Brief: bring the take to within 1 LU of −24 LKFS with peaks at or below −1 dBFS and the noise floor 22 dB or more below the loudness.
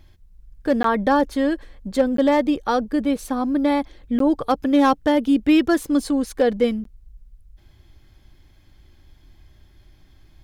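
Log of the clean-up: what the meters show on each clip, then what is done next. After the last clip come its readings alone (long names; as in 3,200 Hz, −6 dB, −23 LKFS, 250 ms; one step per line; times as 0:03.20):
share of clipped samples 0.5%; peaks flattened at −9.0 dBFS; number of dropouts 4; longest dropout 13 ms; integrated loudness −20.5 LKFS; sample peak −9.0 dBFS; target loudness −24.0 LKFS
→ clipped peaks rebuilt −9 dBFS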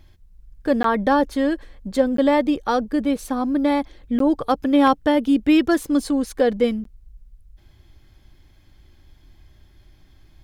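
share of clipped samples 0.0%; number of dropouts 4; longest dropout 13 ms
→ repair the gap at 0:00.83/0:02.17/0:04.19/0:06.84, 13 ms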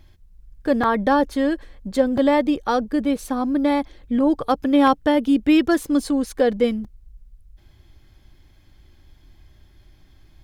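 number of dropouts 0; integrated loudness −20.5 LKFS; sample peak −3.5 dBFS; target loudness −24.0 LKFS
→ level −3.5 dB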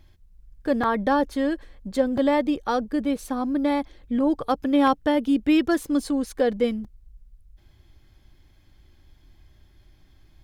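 integrated loudness −24.0 LKFS; sample peak −7.0 dBFS; background noise floor −56 dBFS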